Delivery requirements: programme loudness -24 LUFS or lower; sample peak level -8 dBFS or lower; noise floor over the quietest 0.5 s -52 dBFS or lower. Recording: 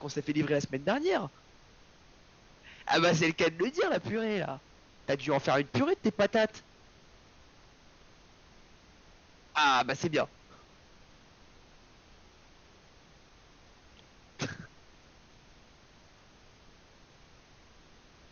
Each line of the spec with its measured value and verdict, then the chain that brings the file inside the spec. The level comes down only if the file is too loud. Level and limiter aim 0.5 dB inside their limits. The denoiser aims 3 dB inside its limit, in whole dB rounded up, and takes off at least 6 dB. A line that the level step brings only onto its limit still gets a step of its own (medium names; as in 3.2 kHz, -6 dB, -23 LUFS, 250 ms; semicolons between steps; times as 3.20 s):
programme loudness -30.0 LUFS: pass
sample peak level -13.0 dBFS: pass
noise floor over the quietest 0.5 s -58 dBFS: pass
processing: none needed